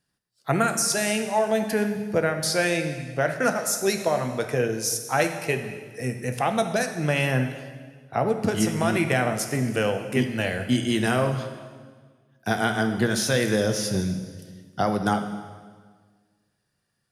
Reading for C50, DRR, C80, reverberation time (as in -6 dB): 8.0 dB, 6.0 dB, 9.5 dB, 1.6 s